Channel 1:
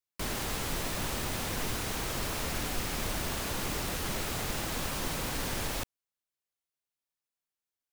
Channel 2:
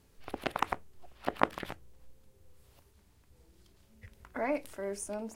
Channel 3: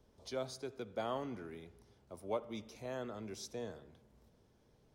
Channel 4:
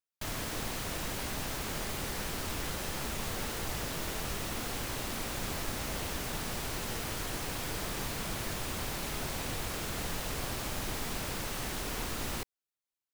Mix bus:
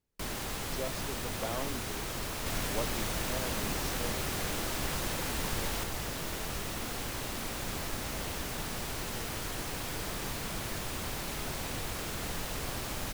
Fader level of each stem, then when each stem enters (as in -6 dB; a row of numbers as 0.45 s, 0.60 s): -3.0 dB, -19.5 dB, +0.5 dB, -0.5 dB; 0.00 s, 0.00 s, 0.45 s, 2.25 s